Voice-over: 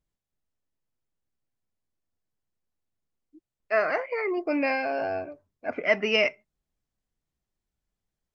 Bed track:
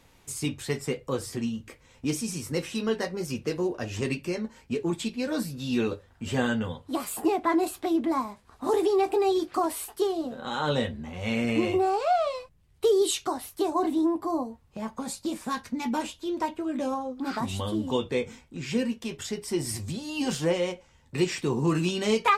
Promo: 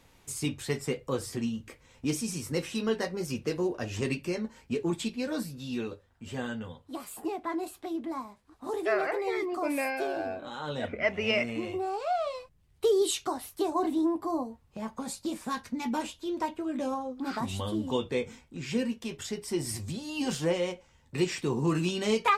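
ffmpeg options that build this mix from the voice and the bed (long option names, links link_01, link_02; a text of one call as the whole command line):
ffmpeg -i stem1.wav -i stem2.wav -filter_complex "[0:a]adelay=5150,volume=-5dB[link_01];[1:a]volume=5dB,afade=type=out:start_time=5.03:duration=0.87:silence=0.421697,afade=type=in:start_time=11.76:duration=0.87:silence=0.473151[link_02];[link_01][link_02]amix=inputs=2:normalize=0" out.wav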